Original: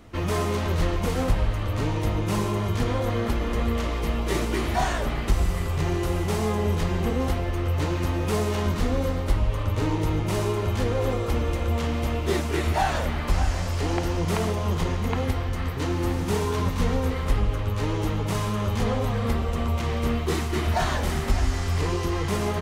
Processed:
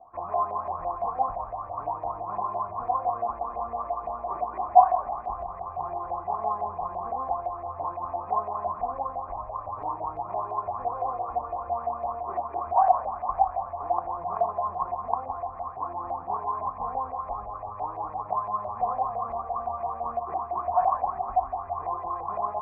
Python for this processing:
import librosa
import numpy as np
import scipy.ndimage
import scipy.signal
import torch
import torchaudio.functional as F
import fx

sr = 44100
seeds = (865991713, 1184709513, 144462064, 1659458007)

y = fx.formant_cascade(x, sr, vowel='a')
y = fx.filter_lfo_lowpass(y, sr, shape='saw_up', hz=5.9, low_hz=640.0, high_hz=2100.0, q=6.3)
y = F.gain(torch.from_numpy(y), 4.0).numpy()